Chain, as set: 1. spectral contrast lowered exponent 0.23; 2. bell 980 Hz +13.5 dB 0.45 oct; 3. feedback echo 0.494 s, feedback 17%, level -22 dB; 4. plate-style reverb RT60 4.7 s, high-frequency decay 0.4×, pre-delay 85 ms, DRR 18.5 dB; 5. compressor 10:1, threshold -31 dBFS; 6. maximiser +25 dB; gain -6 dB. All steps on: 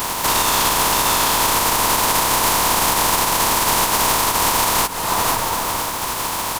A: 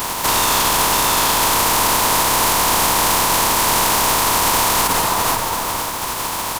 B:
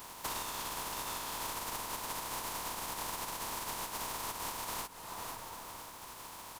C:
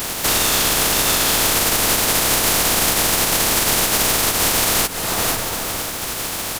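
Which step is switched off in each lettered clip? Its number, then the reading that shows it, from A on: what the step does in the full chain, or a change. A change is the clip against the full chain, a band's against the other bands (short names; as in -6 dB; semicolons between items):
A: 5, mean gain reduction 11.5 dB; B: 6, crest factor change +6.0 dB; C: 2, 1 kHz band -8.0 dB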